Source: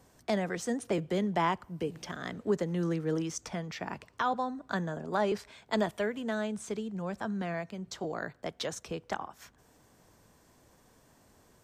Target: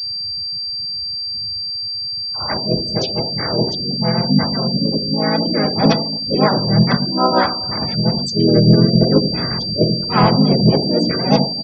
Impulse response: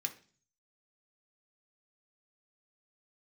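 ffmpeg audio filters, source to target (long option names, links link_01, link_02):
-filter_complex "[0:a]areverse,equalizer=frequency=1500:width=0.33:gain=-12,asplit=2[link_01][link_02];[link_02]adelay=260,highpass=300,lowpass=3400,asoftclip=type=hard:threshold=-31.5dB,volume=-21dB[link_03];[link_01][link_03]amix=inputs=2:normalize=0,flanger=delay=9:depth=6.9:regen=-71:speed=1.3:shape=sinusoidal[link_04];[1:a]atrim=start_sample=2205,asetrate=27342,aresample=44100[link_05];[link_04][link_05]afir=irnorm=-1:irlink=0,adynamicsmooth=sensitivity=3.5:basefreq=2200,highshelf=frequency=5200:gain=9.5,asplit=4[link_06][link_07][link_08][link_09];[link_07]asetrate=33038,aresample=44100,atempo=1.33484,volume=-2dB[link_10];[link_08]asetrate=55563,aresample=44100,atempo=0.793701,volume=-2dB[link_11];[link_09]asetrate=58866,aresample=44100,atempo=0.749154,volume=-11dB[link_12];[link_06][link_10][link_11][link_12]amix=inputs=4:normalize=0,acontrast=37,apsyclip=18.5dB,afftfilt=real='re*gte(hypot(re,im),0.0631)':imag='im*gte(hypot(re,im),0.0631)':win_size=1024:overlap=0.75,aeval=exprs='val(0)+0.112*sin(2*PI*4700*n/s)':channel_layout=same,volume=-2.5dB"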